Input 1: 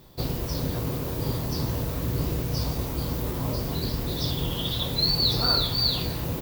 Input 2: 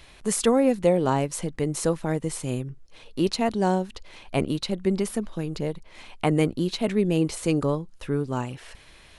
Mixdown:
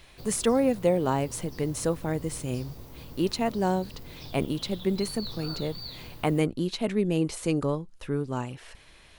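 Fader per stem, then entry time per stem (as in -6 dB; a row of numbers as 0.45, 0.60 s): -16.5, -3.0 dB; 0.00, 0.00 s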